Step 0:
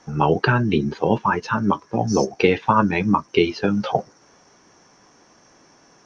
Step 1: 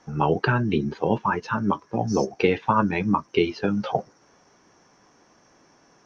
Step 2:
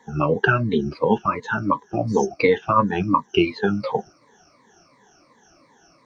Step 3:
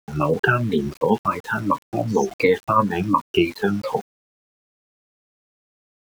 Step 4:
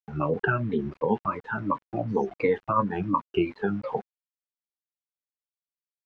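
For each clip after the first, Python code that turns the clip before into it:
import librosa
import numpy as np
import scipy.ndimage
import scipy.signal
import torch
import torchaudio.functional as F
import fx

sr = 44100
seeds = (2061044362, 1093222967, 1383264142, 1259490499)

y1 = fx.high_shelf(x, sr, hz=4600.0, db=-5.0)
y1 = y1 * librosa.db_to_amplitude(-3.5)
y2 = fx.spec_ripple(y1, sr, per_octave=1.0, drift_hz=-2.8, depth_db=22)
y2 = y2 * librosa.db_to_amplitude(-2.5)
y3 = np.where(np.abs(y2) >= 10.0 ** (-36.5 / 20.0), y2, 0.0)
y4 = scipy.signal.sosfilt(scipy.signal.butter(2, 2000.0, 'lowpass', fs=sr, output='sos'), y3)
y4 = y4 * librosa.db_to_amplitude(-6.0)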